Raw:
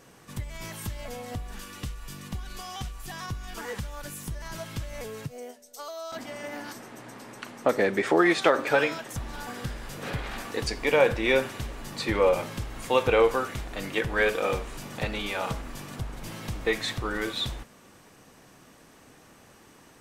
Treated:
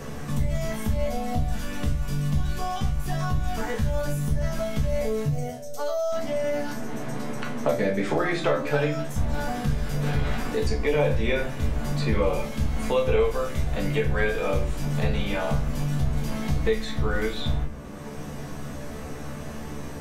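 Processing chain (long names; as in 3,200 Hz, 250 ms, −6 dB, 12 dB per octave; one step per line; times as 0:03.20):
low-shelf EQ 210 Hz +10 dB
tuned comb filter 73 Hz, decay 0.18 s, harmonics all, mix 90%
convolution reverb RT60 0.35 s, pre-delay 5 ms, DRR 0 dB
multiband upward and downward compressor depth 70%
level +1.5 dB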